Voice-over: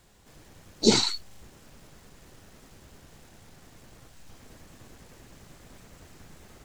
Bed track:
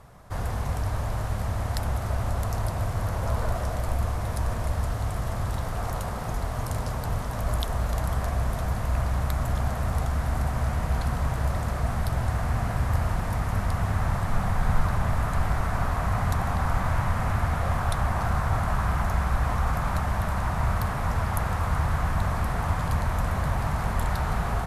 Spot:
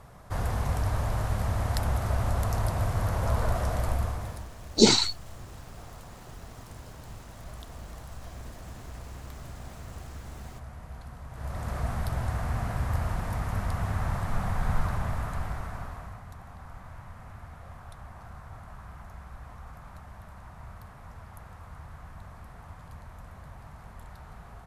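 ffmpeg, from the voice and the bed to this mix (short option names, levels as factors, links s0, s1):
-filter_complex "[0:a]adelay=3950,volume=1.26[s0];[1:a]volume=4.47,afade=t=out:st=3.84:d=0.64:silence=0.141254,afade=t=in:st=11.3:d=0.47:silence=0.223872,afade=t=out:st=14.81:d=1.41:silence=0.158489[s1];[s0][s1]amix=inputs=2:normalize=0"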